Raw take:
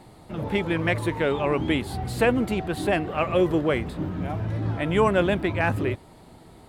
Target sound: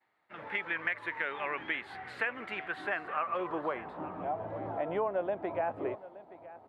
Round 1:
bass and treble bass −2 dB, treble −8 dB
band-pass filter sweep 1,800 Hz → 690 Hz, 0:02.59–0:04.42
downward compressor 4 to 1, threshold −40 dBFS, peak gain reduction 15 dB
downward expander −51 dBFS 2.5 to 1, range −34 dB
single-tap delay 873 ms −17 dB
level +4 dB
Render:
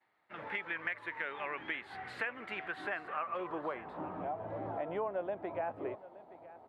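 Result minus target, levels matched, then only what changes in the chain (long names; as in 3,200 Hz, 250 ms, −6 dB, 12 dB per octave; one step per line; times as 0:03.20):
downward compressor: peak gain reduction +4.5 dB
change: downward compressor 4 to 1, threshold −34 dBFS, peak gain reduction 10.5 dB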